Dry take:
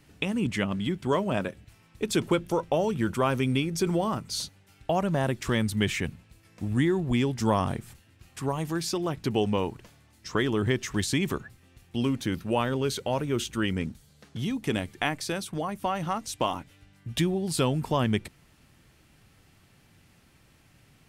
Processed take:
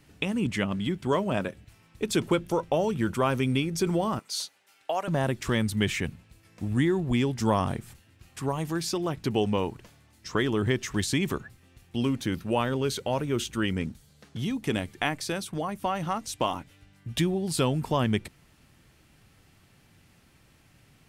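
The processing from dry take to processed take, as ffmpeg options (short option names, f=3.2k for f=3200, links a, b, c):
-filter_complex "[0:a]asettb=1/sr,asplit=3[a][b][c];[a]atrim=end=4.194[d];[b]atrim=start=4.19:end=5.08,asetpts=PTS-STARTPTS,afade=t=in:d=0.004:c=qsin,afade=t=out:st=0.886:d=0.004:c=qsin,highpass=590[e];[c]atrim=start=5.076[f];[d][e]acrossfade=d=0.004:c1=hsin:c2=qsin[g];[g][f]acrossfade=d=0.004:c1=qsin:c2=hsin"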